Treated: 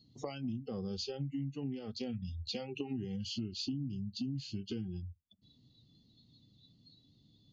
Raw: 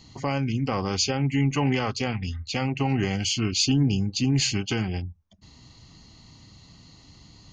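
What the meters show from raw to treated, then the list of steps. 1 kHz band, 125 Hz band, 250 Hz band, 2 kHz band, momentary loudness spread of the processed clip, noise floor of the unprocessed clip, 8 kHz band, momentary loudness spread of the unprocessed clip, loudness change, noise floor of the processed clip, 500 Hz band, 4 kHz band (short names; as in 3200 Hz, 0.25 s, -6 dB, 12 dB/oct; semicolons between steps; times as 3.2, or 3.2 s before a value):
-22.0 dB, -16.0 dB, -12.5 dB, -23.0 dB, 3 LU, -53 dBFS, -23.5 dB, 7 LU, -15.0 dB, -68 dBFS, -12.5 dB, -15.0 dB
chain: spectral noise reduction 23 dB; graphic EQ 125/250/500/1000/2000/4000/8000 Hz +10/+11/+7/-9/-8/+10/-11 dB; compressor 10:1, threshold -35 dBFS, peak gain reduction 28.5 dB; gain -1.5 dB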